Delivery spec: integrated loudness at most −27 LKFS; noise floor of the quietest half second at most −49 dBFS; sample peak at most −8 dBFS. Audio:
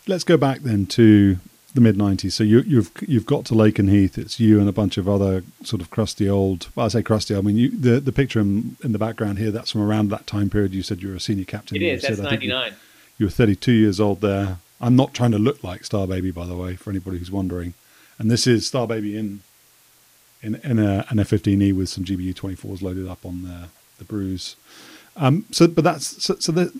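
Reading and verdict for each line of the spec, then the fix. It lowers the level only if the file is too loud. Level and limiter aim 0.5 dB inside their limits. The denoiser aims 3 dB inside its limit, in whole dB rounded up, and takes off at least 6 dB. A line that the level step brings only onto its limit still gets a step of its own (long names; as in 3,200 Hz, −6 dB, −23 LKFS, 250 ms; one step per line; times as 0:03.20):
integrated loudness −20.5 LKFS: out of spec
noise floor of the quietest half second −55 dBFS: in spec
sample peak −2.0 dBFS: out of spec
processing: level −7 dB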